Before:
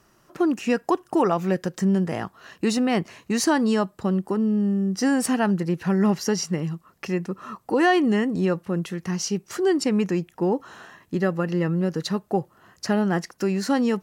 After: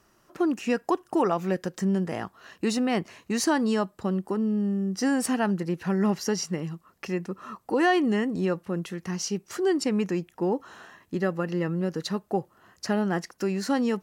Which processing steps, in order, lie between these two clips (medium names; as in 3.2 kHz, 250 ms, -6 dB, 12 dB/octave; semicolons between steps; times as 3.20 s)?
peaking EQ 140 Hz -4 dB 0.66 oct; trim -3 dB